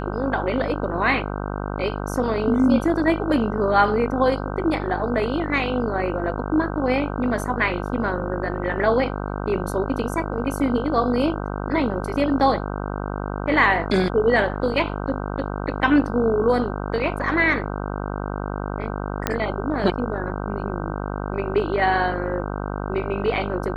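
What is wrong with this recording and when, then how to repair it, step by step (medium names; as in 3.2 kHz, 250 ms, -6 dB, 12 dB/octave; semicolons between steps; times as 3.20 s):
buzz 50 Hz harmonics 31 -28 dBFS
19.27 s: pop -6 dBFS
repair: de-click; de-hum 50 Hz, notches 31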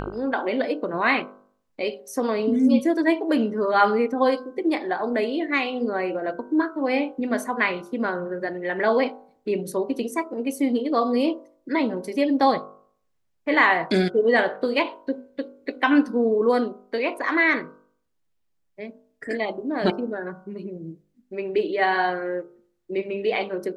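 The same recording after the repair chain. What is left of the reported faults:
nothing left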